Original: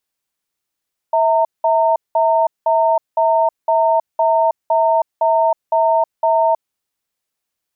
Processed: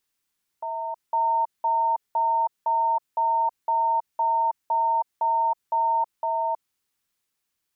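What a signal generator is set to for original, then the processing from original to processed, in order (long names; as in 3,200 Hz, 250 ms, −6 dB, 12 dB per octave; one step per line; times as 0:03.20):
tone pair in a cadence 651 Hz, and 915 Hz, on 0.32 s, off 0.19 s, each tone −14 dBFS 5.53 s
parametric band 620 Hz −7.5 dB 0.65 octaves
brickwall limiter −19.5 dBFS
on a send: backwards echo 506 ms −5 dB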